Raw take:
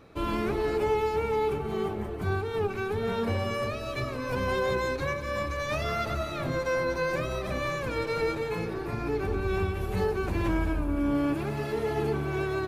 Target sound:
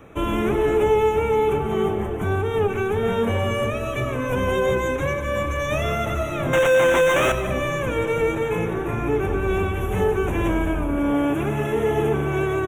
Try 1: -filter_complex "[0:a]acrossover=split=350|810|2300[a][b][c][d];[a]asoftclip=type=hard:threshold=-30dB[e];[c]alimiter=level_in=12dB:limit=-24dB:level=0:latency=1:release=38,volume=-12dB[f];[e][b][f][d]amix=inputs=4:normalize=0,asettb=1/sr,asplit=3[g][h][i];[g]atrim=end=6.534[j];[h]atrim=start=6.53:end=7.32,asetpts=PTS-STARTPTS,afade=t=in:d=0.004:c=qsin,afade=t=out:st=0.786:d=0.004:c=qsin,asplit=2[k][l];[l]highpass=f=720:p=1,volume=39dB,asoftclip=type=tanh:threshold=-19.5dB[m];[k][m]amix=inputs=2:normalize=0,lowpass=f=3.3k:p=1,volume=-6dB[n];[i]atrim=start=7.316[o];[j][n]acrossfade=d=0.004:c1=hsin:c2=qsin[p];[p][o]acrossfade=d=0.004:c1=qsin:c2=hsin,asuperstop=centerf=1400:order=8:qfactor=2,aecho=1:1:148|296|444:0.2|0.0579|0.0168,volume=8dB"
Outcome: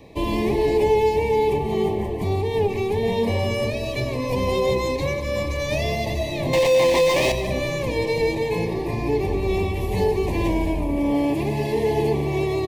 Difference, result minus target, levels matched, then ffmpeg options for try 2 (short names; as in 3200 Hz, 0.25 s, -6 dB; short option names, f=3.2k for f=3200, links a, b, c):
4000 Hz band +3.5 dB
-filter_complex "[0:a]acrossover=split=350|810|2300[a][b][c][d];[a]asoftclip=type=hard:threshold=-30dB[e];[c]alimiter=level_in=12dB:limit=-24dB:level=0:latency=1:release=38,volume=-12dB[f];[e][b][f][d]amix=inputs=4:normalize=0,asettb=1/sr,asplit=3[g][h][i];[g]atrim=end=6.534[j];[h]atrim=start=6.53:end=7.32,asetpts=PTS-STARTPTS,afade=t=in:d=0.004:c=qsin,afade=t=out:st=0.786:d=0.004:c=qsin,asplit=2[k][l];[l]highpass=f=720:p=1,volume=39dB,asoftclip=type=tanh:threshold=-19.5dB[m];[k][m]amix=inputs=2:normalize=0,lowpass=f=3.3k:p=1,volume=-6dB[n];[i]atrim=start=7.316[o];[j][n]acrossfade=d=0.004:c1=hsin:c2=qsin[p];[p][o]acrossfade=d=0.004:c1=qsin:c2=hsin,asuperstop=centerf=4600:order=8:qfactor=2,aecho=1:1:148|296|444:0.2|0.0579|0.0168,volume=8dB"